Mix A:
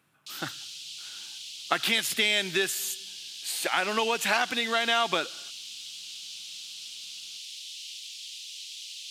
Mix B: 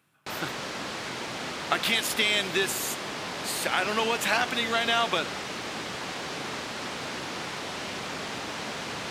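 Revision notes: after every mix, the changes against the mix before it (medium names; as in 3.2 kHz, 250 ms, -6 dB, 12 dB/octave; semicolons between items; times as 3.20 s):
background: remove steep high-pass 2.9 kHz 48 dB/octave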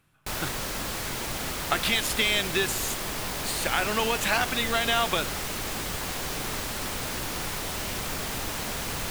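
background: remove low-pass 5.1 kHz 12 dB/octave; master: remove high-pass 170 Hz 12 dB/octave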